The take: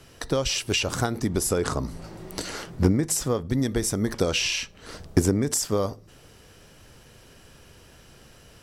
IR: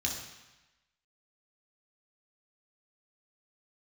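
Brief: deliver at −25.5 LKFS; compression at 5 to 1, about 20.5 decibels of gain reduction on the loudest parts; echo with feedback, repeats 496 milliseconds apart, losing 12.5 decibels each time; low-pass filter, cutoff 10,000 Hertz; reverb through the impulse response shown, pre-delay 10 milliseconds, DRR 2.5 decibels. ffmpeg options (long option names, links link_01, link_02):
-filter_complex "[0:a]lowpass=10000,acompressor=threshold=-38dB:ratio=5,aecho=1:1:496|992|1488:0.237|0.0569|0.0137,asplit=2[link_01][link_02];[1:a]atrim=start_sample=2205,adelay=10[link_03];[link_02][link_03]afir=irnorm=-1:irlink=0,volume=-7dB[link_04];[link_01][link_04]amix=inputs=2:normalize=0,volume=12.5dB"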